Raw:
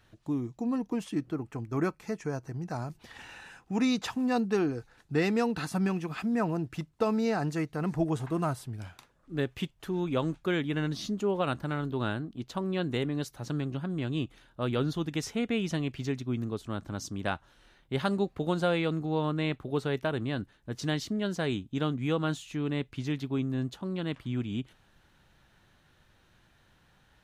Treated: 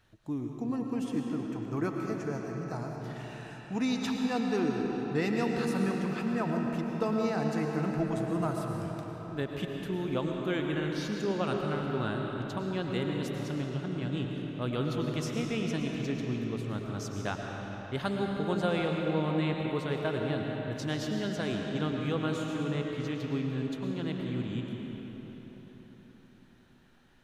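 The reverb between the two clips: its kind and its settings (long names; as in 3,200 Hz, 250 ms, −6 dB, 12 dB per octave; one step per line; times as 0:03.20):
comb and all-pass reverb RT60 4.6 s, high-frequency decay 0.7×, pre-delay 70 ms, DRR 0.5 dB
level −3.5 dB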